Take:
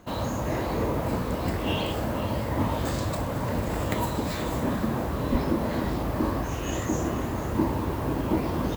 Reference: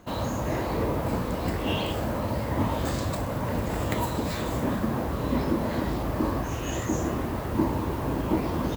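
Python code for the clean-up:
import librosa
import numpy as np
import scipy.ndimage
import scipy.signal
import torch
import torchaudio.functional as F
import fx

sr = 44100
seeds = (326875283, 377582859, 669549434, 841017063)

y = fx.highpass(x, sr, hz=140.0, slope=24, at=(5.31, 5.43), fade=0.02)
y = fx.fix_echo_inverse(y, sr, delay_ms=494, level_db=-13.0)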